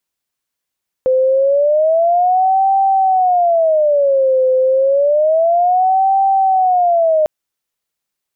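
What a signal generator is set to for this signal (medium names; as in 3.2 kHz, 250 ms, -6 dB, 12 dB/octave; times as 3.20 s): siren wail 516–779 Hz 0.29 per s sine -9.5 dBFS 6.20 s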